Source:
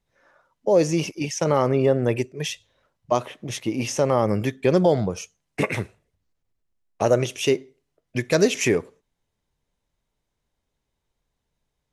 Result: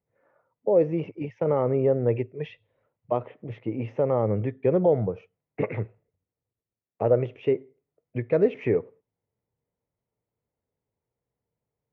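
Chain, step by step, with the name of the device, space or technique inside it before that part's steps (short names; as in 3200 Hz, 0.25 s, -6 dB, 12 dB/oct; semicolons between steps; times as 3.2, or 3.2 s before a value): 2.15–3.17 bell 3700 Hz +5.5 dB 1.7 oct; bass cabinet (speaker cabinet 86–2000 Hz, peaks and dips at 110 Hz +8 dB, 470 Hz +7 dB, 1100 Hz -4 dB, 1600 Hz -8 dB); gain -5.5 dB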